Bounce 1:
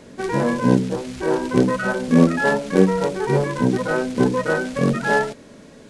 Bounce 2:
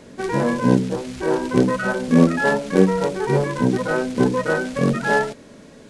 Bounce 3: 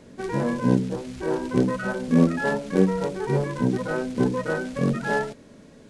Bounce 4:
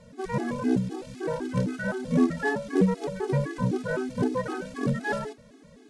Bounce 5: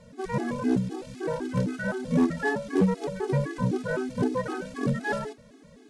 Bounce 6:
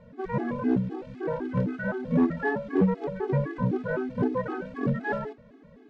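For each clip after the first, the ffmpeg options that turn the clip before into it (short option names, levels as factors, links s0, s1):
-af anull
-af "lowshelf=f=300:g=5,volume=0.447"
-af "afftfilt=real='re*gt(sin(2*PI*3.9*pts/sr)*(1-2*mod(floor(b*sr/1024/220),2)),0)':imag='im*gt(sin(2*PI*3.9*pts/sr)*(1-2*mod(floor(b*sr/1024/220),2)),0)':win_size=1024:overlap=0.75"
-af "asoftclip=type=hard:threshold=0.168"
-af "lowpass=2100"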